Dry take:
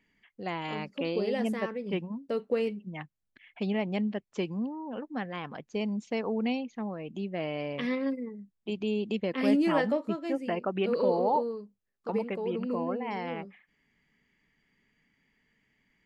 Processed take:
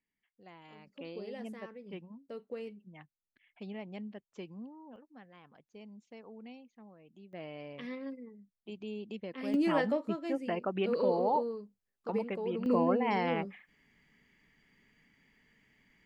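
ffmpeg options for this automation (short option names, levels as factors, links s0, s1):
-af "asetnsamples=n=441:p=0,asendcmd='0.87 volume volume -13dB;4.96 volume volume -19.5dB;7.33 volume volume -11dB;9.54 volume volume -3dB;12.66 volume volume 4dB',volume=0.106"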